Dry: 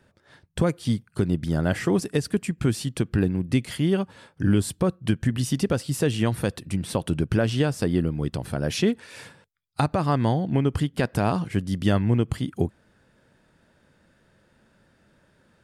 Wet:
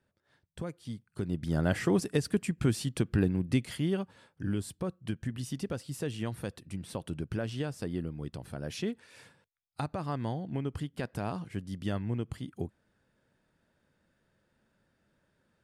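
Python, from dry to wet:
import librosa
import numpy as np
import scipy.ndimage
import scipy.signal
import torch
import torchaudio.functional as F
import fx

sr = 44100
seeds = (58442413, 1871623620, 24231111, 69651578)

y = fx.gain(x, sr, db=fx.line((0.94, -16.0), (1.59, -4.5), (3.43, -4.5), (4.45, -12.0)))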